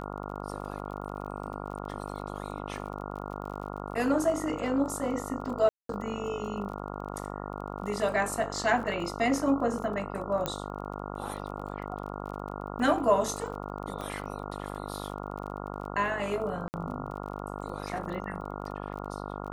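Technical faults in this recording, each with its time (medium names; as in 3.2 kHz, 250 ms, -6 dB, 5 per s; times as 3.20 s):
buzz 50 Hz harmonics 28 -38 dBFS
crackle 32 per s -40 dBFS
5.69–5.89 s: dropout 203 ms
10.46 s: pop -14 dBFS
14.01 s: pop -24 dBFS
16.68–16.74 s: dropout 59 ms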